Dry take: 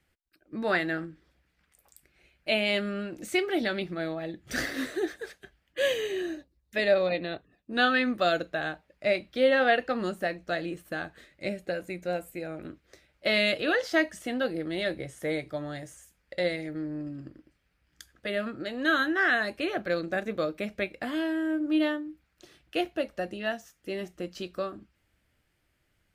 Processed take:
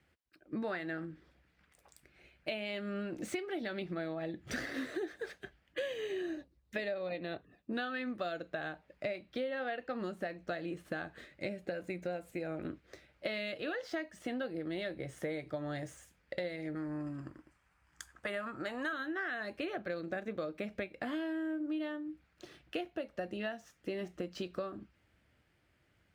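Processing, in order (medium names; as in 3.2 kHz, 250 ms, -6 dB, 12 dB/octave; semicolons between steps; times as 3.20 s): median filter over 3 samples; 16.75–18.93 s: graphic EQ 125/250/500/1000/4000/8000 Hz -3/-5/-6/+10/-6/+10 dB; compression 10:1, threshold -37 dBFS, peak gain reduction 19 dB; high-pass 60 Hz; treble shelf 4.1 kHz -7 dB; trim +2.5 dB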